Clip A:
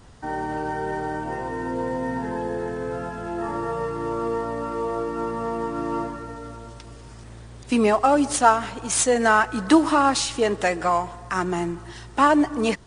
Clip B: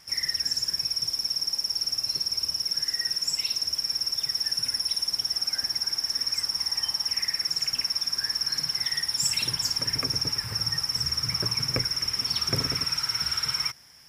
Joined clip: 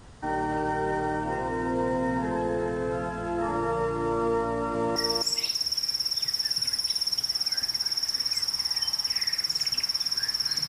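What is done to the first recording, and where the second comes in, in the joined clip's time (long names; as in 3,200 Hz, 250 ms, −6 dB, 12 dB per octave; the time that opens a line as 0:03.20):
clip A
0:04.48–0:04.96: delay throw 260 ms, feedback 15%, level −4 dB
0:04.96: continue with clip B from 0:02.97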